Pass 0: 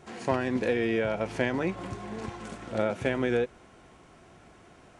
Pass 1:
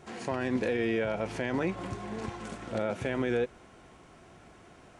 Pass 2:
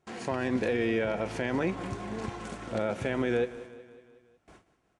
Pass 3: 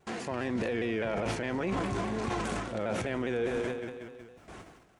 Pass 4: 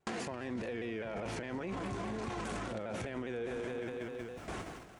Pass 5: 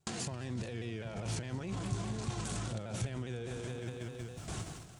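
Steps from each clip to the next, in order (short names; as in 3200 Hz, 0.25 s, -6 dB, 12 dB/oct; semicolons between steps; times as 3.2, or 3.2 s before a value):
limiter -20 dBFS, peak gain reduction 7.5 dB
gate with hold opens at -42 dBFS; feedback echo 0.184 s, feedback 57%, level -16.5 dB; gain +1 dB
transient shaper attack -2 dB, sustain +10 dB; reverse; compressor, threshold -37 dBFS, peak gain reduction 12.5 dB; reverse; shaped vibrato saw down 4.9 Hz, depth 100 cents; gain +8 dB
gate with hold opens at -53 dBFS; limiter -30 dBFS, peak gain reduction 11 dB; compressor 4:1, threshold -46 dBFS, peak gain reduction 10.5 dB; gain +8.5 dB
ten-band EQ 125 Hz +10 dB, 250 Hz -5 dB, 500 Hz -6 dB, 1000 Hz -4 dB, 2000 Hz -7 dB, 4000 Hz +3 dB, 8000 Hz +8 dB; gain +1.5 dB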